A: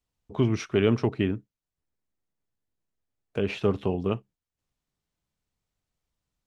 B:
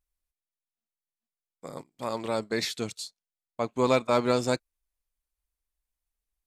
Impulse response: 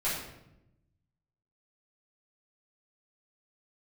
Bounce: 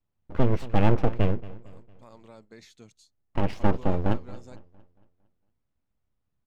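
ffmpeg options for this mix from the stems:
-filter_complex "[0:a]highshelf=f=2500:g=-11.5,aeval=exprs='abs(val(0))':c=same,volume=1.26,asplit=2[s0][s1];[s1]volume=0.119[s2];[1:a]equalizer=f=6500:t=o:w=0.25:g=8.5,acompressor=threshold=0.0562:ratio=6,volume=0.112[s3];[s2]aecho=0:1:228|456|684|912|1140|1368:1|0.43|0.185|0.0795|0.0342|0.0147[s4];[s0][s3][s4]amix=inputs=3:normalize=0,bass=f=250:g=5,treble=f=4000:g=-6"

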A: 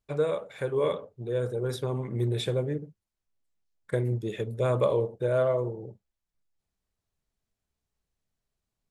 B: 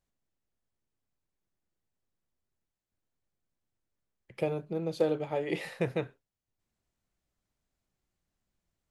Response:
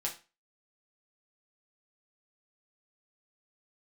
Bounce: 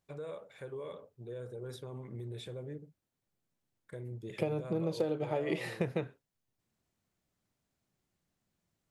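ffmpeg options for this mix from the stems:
-filter_complex "[0:a]alimiter=level_in=1.06:limit=0.0631:level=0:latency=1:release=92,volume=0.944,volume=0.299[s0];[1:a]highpass=120,lowshelf=f=220:g=6.5,volume=1.19[s1];[s0][s1]amix=inputs=2:normalize=0,acompressor=threshold=0.0355:ratio=5"

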